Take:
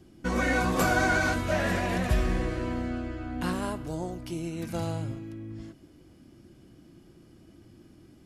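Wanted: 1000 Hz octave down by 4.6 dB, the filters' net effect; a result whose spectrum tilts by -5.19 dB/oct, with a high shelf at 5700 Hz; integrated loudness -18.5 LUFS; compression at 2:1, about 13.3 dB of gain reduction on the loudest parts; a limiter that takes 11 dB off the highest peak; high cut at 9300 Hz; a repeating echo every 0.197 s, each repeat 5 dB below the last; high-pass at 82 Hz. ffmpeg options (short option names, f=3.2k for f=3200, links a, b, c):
-af "highpass=82,lowpass=9.3k,equalizer=f=1k:t=o:g=-7,highshelf=f=5.7k:g=4.5,acompressor=threshold=-48dB:ratio=2,alimiter=level_in=14.5dB:limit=-24dB:level=0:latency=1,volume=-14.5dB,aecho=1:1:197|394|591|788|985|1182|1379:0.562|0.315|0.176|0.0988|0.0553|0.031|0.0173,volume=28.5dB"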